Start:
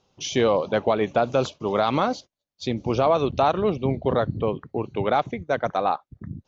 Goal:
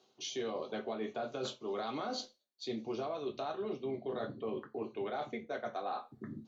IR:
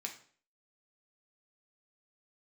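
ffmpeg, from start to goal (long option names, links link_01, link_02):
-filter_complex "[0:a]acrossover=split=180[link_01][link_02];[link_02]acompressor=threshold=-23dB:ratio=6[link_03];[link_01][link_03]amix=inputs=2:normalize=0[link_04];[1:a]atrim=start_sample=2205,asetrate=79380,aresample=44100[link_05];[link_04][link_05]afir=irnorm=-1:irlink=0,areverse,acompressor=threshold=-45dB:ratio=4,areverse,volume=7.5dB"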